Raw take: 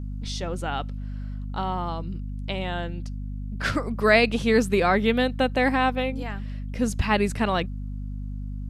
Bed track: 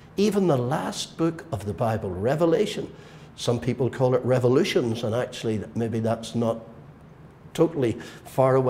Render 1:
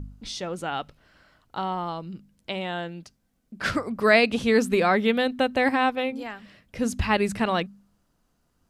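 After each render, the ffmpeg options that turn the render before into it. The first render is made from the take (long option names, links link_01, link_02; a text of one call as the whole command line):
ffmpeg -i in.wav -af "bandreject=frequency=50:width_type=h:width=4,bandreject=frequency=100:width_type=h:width=4,bandreject=frequency=150:width_type=h:width=4,bandreject=frequency=200:width_type=h:width=4,bandreject=frequency=250:width_type=h:width=4" out.wav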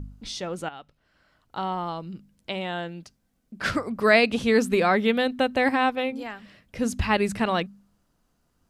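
ffmpeg -i in.wav -filter_complex "[0:a]asplit=2[link_01][link_02];[link_01]atrim=end=0.69,asetpts=PTS-STARTPTS,afade=type=out:start_time=0.686:duration=0.004:curve=hsin:silence=0.237137[link_03];[link_02]atrim=start=0.69,asetpts=PTS-STARTPTS,afade=type=in:duration=0.95:curve=qua:silence=0.237137[link_04];[link_03][link_04]concat=n=2:v=0:a=1" out.wav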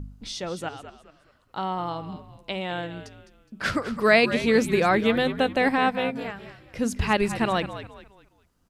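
ffmpeg -i in.wav -filter_complex "[0:a]asplit=5[link_01][link_02][link_03][link_04][link_05];[link_02]adelay=208,afreqshift=-66,volume=-12dB[link_06];[link_03]adelay=416,afreqshift=-132,volume=-21.1dB[link_07];[link_04]adelay=624,afreqshift=-198,volume=-30.2dB[link_08];[link_05]adelay=832,afreqshift=-264,volume=-39.4dB[link_09];[link_01][link_06][link_07][link_08][link_09]amix=inputs=5:normalize=0" out.wav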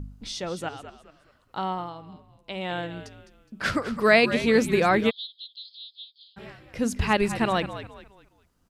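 ffmpeg -i in.wav -filter_complex "[0:a]asplit=3[link_01][link_02][link_03];[link_01]afade=type=out:start_time=5.09:duration=0.02[link_04];[link_02]asuperpass=centerf=4000:order=12:qfactor=2.4,afade=type=in:start_time=5.09:duration=0.02,afade=type=out:start_time=6.36:duration=0.02[link_05];[link_03]afade=type=in:start_time=6.36:duration=0.02[link_06];[link_04][link_05][link_06]amix=inputs=3:normalize=0,asplit=3[link_07][link_08][link_09];[link_07]atrim=end=1.92,asetpts=PTS-STARTPTS,afade=type=out:start_time=1.7:duration=0.22:silence=0.375837[link_10];[link_08]atrim=start=1.92:end=2.44,asetpts=PTS-STARTPTS,volume=-8.5dB[link_11];[link_09]atrim=start=2.44,asetpts=PTS-STARTPTS,afade=type=in:duration=0.22:silence=0.375837[link_12];[link_10][link_11][link_12]concat=n=3:v=0:a=1" out.wav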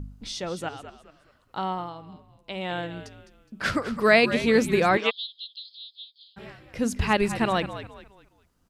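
ffmpeg -i in.wav -filter_complex "[0:a]asettb=1/sr,asplit=3[link_01][link_02][link_03];[link_01]atrim=end=4.974[link_04];[link_02]atrim=start=4.97:end=5.6,asetpts=PTS-STARTPTS,afade=type=in:duration=0.004:curve=qsin,afade=type=out:start_time=0.626:duration=0.004:curve=qsin,highpass=460,equalizer=frequency=780:width_type=q:width=4:gain=4,equalizer=frequency=1100:width_type=q:width=4:gain=9,equalizer=frequency=2800:width_type=q:width=4:gain=7,equalizer=frequency=5400:width_type=q:width=4:gain=9,lowpass=frequency=7600:width=0.5412,lowpass=frequency=7600:width=1.3066[link_05];[link_03]atrim=start=5.596[link_06];[link_04][link_05]acrossfade=duration=0.004:curve1=hsin:curve2=qsin[link_07];[link_07][link_06]acrossfade=duration=0.004:curve1=qsin:curve2=hsin" out.wav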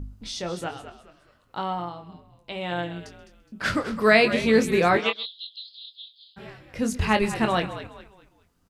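ffmpeg -i in.wav -filter_complex "[0:a]asplit=2[link_01][link_02];[link_02]adelay=23,volume=-7dB[link_03];[link_01][link_03]amix=inputs=2:normalize=0,aecho=1:1:130:0.0891" out.wav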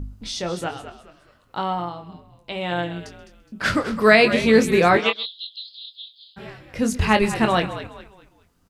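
ffmpeg -i in.wav -af "volume=4dB,alimiter=limit=-2dB:level=0:latency=1" out.wav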